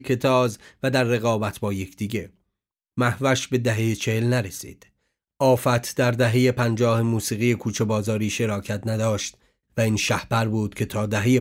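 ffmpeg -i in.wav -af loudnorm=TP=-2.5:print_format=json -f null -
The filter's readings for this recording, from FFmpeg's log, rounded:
"input_i" : "-23.2",
"input_tp" : "-6.3",
"input_lra" : "2.5",
"input_thresh" : "-33.4",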